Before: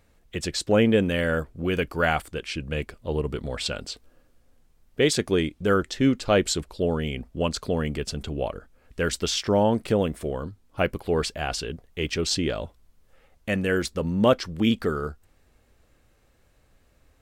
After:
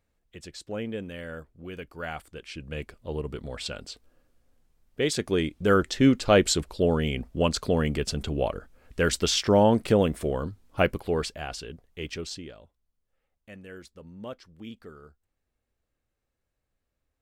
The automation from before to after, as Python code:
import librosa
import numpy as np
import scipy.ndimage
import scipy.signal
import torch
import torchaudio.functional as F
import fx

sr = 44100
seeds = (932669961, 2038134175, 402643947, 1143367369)

y = fx.gain(x, sr, db=fx.line((1.91, -14.0), (2.83, -5.5), (5.0, -5.5), (5.83, 1.5), (10.81, 1.5), (11.52, -7.5), (12.15, -7.5), (12.6, -20.0)))